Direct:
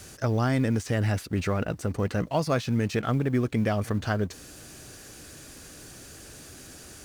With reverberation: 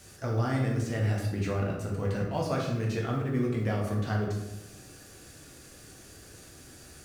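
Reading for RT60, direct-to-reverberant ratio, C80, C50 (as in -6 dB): 0.95 s, -2.5 dB, 6.0 dB, 3.0 dB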